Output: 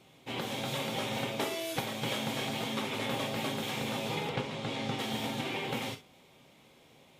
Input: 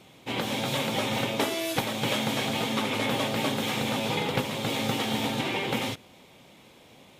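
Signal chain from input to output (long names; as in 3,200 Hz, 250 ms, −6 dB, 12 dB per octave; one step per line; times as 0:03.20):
0:04.29–0:04.99: high-frequency loss of the air 71 metres
reverb whose tail is shaped and stops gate 80 ms flat, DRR 7 dB
level −7 dB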